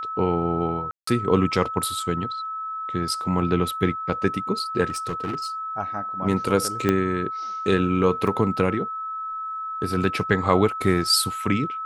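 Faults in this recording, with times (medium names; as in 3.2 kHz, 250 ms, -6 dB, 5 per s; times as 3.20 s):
whine 1.3 kHz -28 dBFS
0.91–1.07 s: dropout 164 ms
4.89–5.47 s: clipped -23 dBFS
6.89 s: pop -8 dBFS
8.27 s: dropout 4.5 ms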